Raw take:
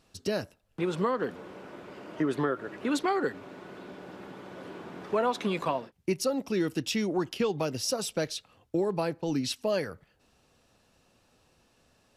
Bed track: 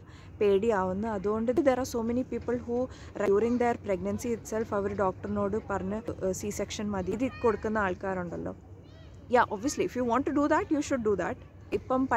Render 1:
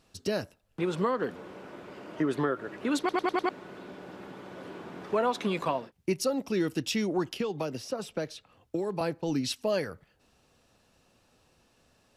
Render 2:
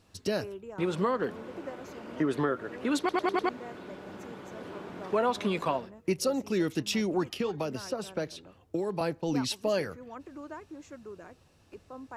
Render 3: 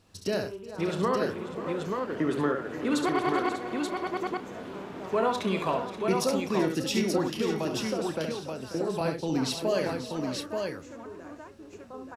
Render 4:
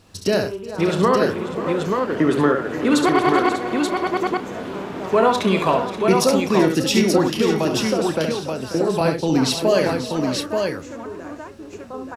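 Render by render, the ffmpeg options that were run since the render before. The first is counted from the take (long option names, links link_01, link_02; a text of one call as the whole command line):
ffmpeg -i in.wav -filter_complex "[0:a]asettb=1/sr,asplit=3[link_01][link_02][link_03];[link_01]atrim=end=7.374[link_04];[link_02]atrim=start=7.37:end=9.01,asetpts=PTS-STARTPTS,afade=type=in:duration=0.004:curve=qsin,afade=type=out:start_time=1.636:duration=0.004:curve=qsin,acrossover=split=150|1300|2800[link_05][link_06][link_07][link_08];[link_05]acompressor=threshold=-50dB:ratio=3[link_09];[link_06]acompressor=threshold=-29dB:ratio=3[link_10];[link_07]acompressor=threshold=-48dB:ratio=3[link_11];[link_08]acompressor=threshold=-50dB:ratio=3[link_12];[link_09][link_10][link_11][link_12]amix=inputs=4:normalize=0[link_13];[link_03]atrim=start=9.006[link_14];[link_04][link_13]acrossfade=duration=0.004:curve1=hsin:curve2=qsin[link_15];[link_15][link_14]acrossfade=duration=0.004:curve1=qsin:curve2=hsin,asplit=6[link_16][link_17][link_18][link_19][link_20][link_21];[link_16]atrim=end=3.092[link_22];[link_17]atrim=start=2.988:end=3.092[link_23];[link_18]atrim=start=2.988:end=3.092[link_24];[link_19]atrim=start=2.988:end=3.092[link_25];[link_20]atrim=start=2.988:end=3.092[link_26];[link_21]atrim=start=3.488[link_27];[link_22][link_23]acrossfade=duration=0.004:curve1=hsin:curve2=hsin[link_28];[link_28][link_24]acrossfade=duration=0.004:curve1=hsin:curve2=hsin[link_29];[link_29][link_25]acrossfade=duration=0.004:curve1=hsin:curve2=hsin[link_30];[link_30][link_26]acrossfade=duration=0.004:curve1=hsin:curve2=hsin[link_31];[link_31][link_27]acrossfade=duration=0.004:curve1=hsin:curve2=hsin" out.wav
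ffmpeg -i in.wav -i bed.wav -filter_complex "[1:a]volume=-17.5dB[link_01];[0:a][link_01]amix=inputs=2:normalize=0" out.wav
ffmpeg -i in.wav -filter_complex "[0:a]asplit=2[link_01][link_02];[link_02]adelay=31,volume=-12dB[link_03];[link_01][link_03]amix=inputs=2:normalize=0,aecho=1:1:68|383|538|594|881:0.501|0.112|0.211|0.2|0.631" out.wav
ffmpeg -i in.wav -af "volume=10dB" out.wav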